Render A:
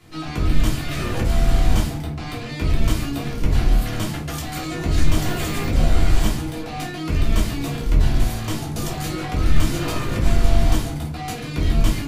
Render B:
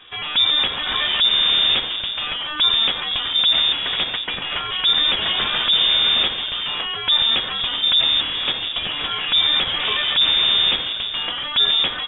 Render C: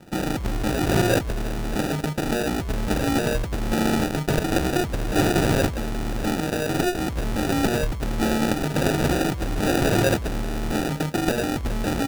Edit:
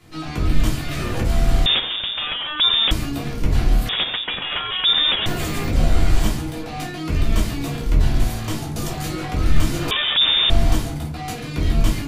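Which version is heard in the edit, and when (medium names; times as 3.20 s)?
A
1.66–2.91 s: from B
3.89–5.26 s: from B
9.91–10.50 s: from B
not used: C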